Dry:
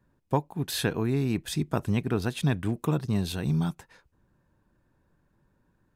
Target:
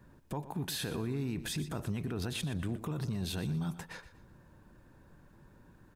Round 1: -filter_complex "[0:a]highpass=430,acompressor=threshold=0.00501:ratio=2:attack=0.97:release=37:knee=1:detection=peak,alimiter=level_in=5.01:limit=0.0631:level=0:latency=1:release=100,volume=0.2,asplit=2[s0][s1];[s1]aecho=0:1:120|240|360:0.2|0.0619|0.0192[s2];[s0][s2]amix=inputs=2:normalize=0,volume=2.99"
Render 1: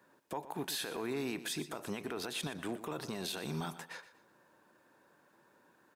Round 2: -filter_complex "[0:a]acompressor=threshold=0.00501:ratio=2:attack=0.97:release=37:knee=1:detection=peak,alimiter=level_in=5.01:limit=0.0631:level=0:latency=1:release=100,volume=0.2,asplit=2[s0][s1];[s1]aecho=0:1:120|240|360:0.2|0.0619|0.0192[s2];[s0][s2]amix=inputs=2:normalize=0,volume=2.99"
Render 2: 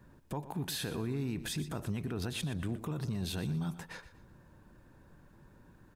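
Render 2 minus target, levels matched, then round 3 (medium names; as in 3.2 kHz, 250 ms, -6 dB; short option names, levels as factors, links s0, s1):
compression: peak gain reduction +4 dB
-filter_complex "[0:a]acompressor=threshold=0.0133:ratio=2:attack=0.97:release=37:knee=1:detection=peak,alimiter=level_in=5.01:limit=0.0631:level=0:latency=1:release=100,volume=0.2,asplit=2[s0][s1];[s1]aecho=0:1:120|240|360:0.2|0.0619|0.0192[s2];[s0][s2]amix=inputs=2:normalize=0,volume=2.99"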